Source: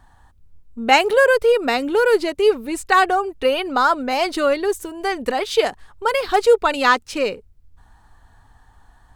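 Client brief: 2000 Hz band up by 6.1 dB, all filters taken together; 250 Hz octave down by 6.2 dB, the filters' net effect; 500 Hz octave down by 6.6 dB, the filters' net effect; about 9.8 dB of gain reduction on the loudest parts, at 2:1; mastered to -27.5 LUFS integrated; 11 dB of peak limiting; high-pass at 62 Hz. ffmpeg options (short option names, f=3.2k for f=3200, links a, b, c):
-af "highpass=62,equalizer=f=250:t=o:g=-5.5,equalizer=f=500:t=o:g=-6.5,equalizer=f=2k:t=o:g=8.5,acompressor=threshold=-24dB:ratio=2,volume=-1dB,alimiter=limit=-17dB:level=0:latency=1"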